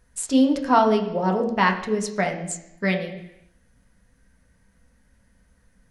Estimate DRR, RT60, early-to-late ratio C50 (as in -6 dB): 1.5 dB, 0.85 s, 9.0 dB